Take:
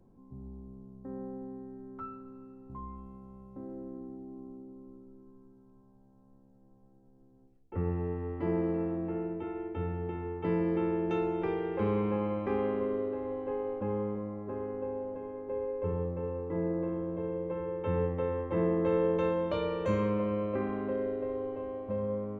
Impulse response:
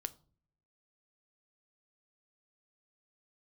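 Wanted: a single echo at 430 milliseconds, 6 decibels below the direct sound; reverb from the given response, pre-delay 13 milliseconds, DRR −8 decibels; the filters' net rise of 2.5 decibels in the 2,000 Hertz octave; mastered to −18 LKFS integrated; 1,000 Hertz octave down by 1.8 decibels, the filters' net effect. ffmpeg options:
-filter_complex "[0:a]equalizer=frequency=1000:width_type=o:gain=-3,equalizer=frequency=2000:width_type=o:gain=4,aecho=1:1:430:0.501,asplit=2[link_01][link_02];[1:a]atrim=start_sample=2205,adelay=13[link_03];[link_02][link_03]afir=irnorm=-1:irlink=0,volume=10dB[link_04];[link_01][link_04]amix=inputs=2:normalize=0,volume=5.5dB"

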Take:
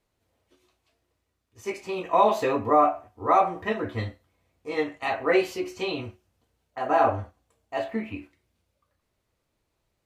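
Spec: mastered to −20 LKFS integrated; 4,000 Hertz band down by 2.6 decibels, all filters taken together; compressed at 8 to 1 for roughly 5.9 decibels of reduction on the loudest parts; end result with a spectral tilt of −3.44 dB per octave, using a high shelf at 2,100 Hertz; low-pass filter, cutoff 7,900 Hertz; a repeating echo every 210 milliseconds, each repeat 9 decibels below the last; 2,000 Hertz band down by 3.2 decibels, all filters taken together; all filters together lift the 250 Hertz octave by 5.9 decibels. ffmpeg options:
ffmpeg -i in.wav -af "lowpass=7900,equalizer=frequency=250:width_type=o:gain=8,equalizer=frequency=2000:width_type=o:gain=-5,highshelf=frequency=2100:gain=4.5,equalizer=frequency=4000:width_type=o:gain=-5.5,acompressor=threshold=-19dB:ratio=8,aecho=1:1:210|420|630|840:0.355|0.124|0.0435|0.0152,volume=7.5dB" out.wav

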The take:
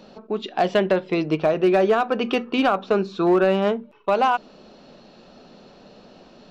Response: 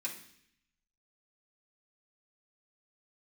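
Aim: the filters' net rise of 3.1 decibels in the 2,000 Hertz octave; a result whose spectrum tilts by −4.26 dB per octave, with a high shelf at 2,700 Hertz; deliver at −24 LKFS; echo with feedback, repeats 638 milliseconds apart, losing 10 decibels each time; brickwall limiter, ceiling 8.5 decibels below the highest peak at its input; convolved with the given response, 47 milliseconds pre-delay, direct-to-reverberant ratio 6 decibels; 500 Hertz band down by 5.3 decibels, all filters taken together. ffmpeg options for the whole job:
-filter_complex "[0:a]equalizer=frequency=500:width_type=o:gain=-7.5,equalizer=frequency=2000:width_type=o:gain=9,highshelf=frequency=2700:gain=-9,alimiter=limit=-17dB:level=0:latency=1,aecho=1:1:638|1276|1914|2552:0.316|0.101|0.0324|0.0104,asplit=2[link_01][link_02];[1:a]atrim=start_sample=2205,adelay=47[link_03];[link_02][link_03]afir=irnorm=-1:irlink=0,volume=-7dB[link_04];[link_01][link_04]amix=inputs=2:normalize=0,volume=2.5dB"

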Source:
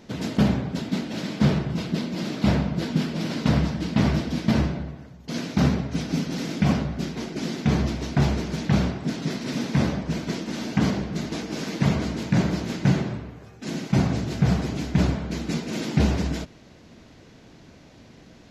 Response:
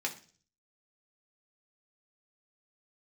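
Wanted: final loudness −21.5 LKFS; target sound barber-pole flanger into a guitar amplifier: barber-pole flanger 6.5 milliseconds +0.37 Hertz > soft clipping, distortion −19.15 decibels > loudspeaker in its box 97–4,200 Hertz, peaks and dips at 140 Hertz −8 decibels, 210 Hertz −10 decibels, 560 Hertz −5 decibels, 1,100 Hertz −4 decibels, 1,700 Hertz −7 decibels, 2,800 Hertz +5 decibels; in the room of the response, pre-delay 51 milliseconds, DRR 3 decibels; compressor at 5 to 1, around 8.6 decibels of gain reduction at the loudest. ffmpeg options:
-filter_complex "[0:a]acompressor=threshold=-25dB:ratio=5,asplit=2[link_01][link_02];[1:a]atrim=start_sample=2205,adelay=51[link_03];[link_02][link_03]afir=irnorm=-1:irlink=0,volume=-7dB[link_04];[link_01][link_04]amix=inputs=2:normalize=0,asplit=2[link_05][link_06];[link_06]adelay=6.5,afreqshift=0.37[link_07];[link_05][link_07]amix=inputs=2:normalize=1,asoftclip=threshold=-23.5dB,highpass=97,equalizer=frequency=140:width_type=q:width=4:gain=-8,equalizer=frequency=210:width_type=q:width=4:gain=-10,equalizer=frequency=560:width_type=q:width=4:gain=-5,equalizer=frequency=1100:width_type=q:width=4:gain=-4,equalizer=frequency=1700:width_type=q:width=4:gain=-7,equalizer=frequency=2800:width_type=q:width=4:gain=5,lowpass=frequency=4200:width=0.5412,lowpass=frequency=4200:width=1.3066,volume=16.5dB"

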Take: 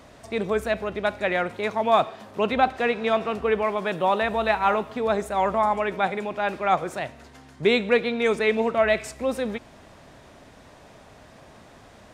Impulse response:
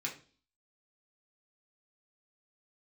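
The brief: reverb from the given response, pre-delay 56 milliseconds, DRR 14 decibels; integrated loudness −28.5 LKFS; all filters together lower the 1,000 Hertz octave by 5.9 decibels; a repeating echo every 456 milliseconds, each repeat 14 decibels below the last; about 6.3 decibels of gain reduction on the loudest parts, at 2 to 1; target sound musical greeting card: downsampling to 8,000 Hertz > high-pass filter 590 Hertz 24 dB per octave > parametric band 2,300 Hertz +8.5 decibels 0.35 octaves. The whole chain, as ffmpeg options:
-filter_complex "[0:a]equalizer=frequency=1000:width_type=o:gain=-8,acompressor=threshold=-27dB:ratio=2,aecho=1:1:456|912:0.2|0.0399,asplit=2[link_01][link_02];[1:a]atrim=start_sample=2205,adelay=56[link_03];[link_02][link_03]afir=irnorm=-1:irlink=0,volume=-16dB[link_04];[link_01][link_04]amix=inputs=2:normalize=0,aresample=8000,aresample=44100,highpass=frequency=590:width=0.5412,highpass=frequency=590:width=1.3066,equalizer=frequency=2300:width_type=o:width=0.35:gain=8.5,volume=2dB"

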